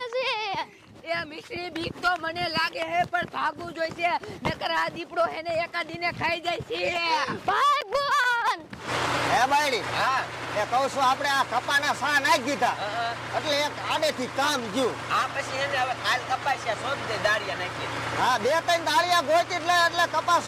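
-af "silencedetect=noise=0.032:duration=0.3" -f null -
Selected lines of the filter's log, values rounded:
silence_start: 0.64
silence_end: 1.07 | silence_duration: 0.44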